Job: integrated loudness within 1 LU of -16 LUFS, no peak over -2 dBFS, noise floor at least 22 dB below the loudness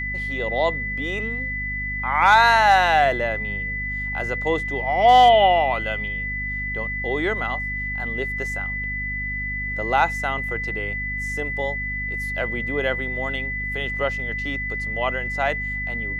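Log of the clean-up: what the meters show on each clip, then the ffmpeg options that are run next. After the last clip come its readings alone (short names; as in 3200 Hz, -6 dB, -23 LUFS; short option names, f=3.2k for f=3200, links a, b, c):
hum 50 Hz; harmonics up to 250 Hz; hum level -30 dBFS; steady tone 2000 Hz; tone level -26 dBFS; loudness -21.5 LUFS; peak -5.0 dBFS; loudness target -16.0 LUFS
-> -af "bandreject=f=50:t=h:w=4,bandreject=f=100:t=h:w=4,bandreject=f=150:t=h:w=4,bandreject=f=200:t=h:w=4,bandreject=f=250:t=h:w=4"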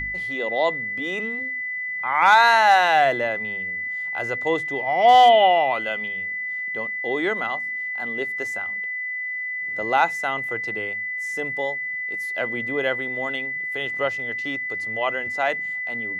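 hum none; steady tone 2000 Hz; tone level -26 dBFS
-> -af "bandreject=f=2k:w=30"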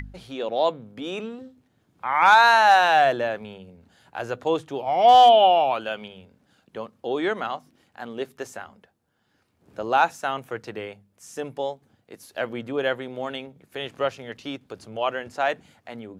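steady tone none; loudness -21.0 LUFS; peak -6.0 dBFS; loudness target -16.0 LUFS
-> -af "volume=5dB,alimiter=limit=-2dB:level=0:latency=1"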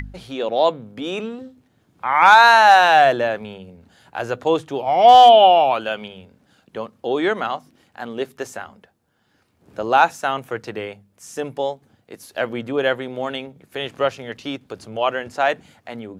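loudness -16.5 LUFS; peak -2.0 dBFS; noise floor -63 dBFS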